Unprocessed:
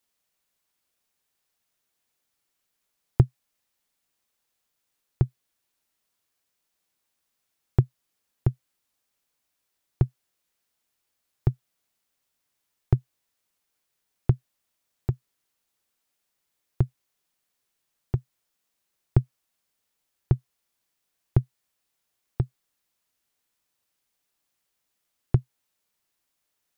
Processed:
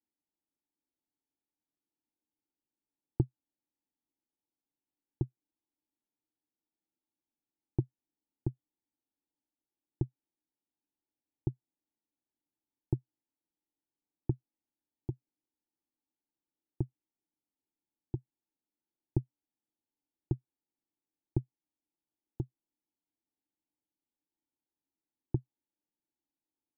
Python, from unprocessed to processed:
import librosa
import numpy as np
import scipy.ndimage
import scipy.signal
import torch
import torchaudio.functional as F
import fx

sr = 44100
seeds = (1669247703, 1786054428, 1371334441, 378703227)

y = fx.formant_cascade(x, sr, vowel='u')
y = F.gain(torch.from_numpy(y), 2.0).numpy()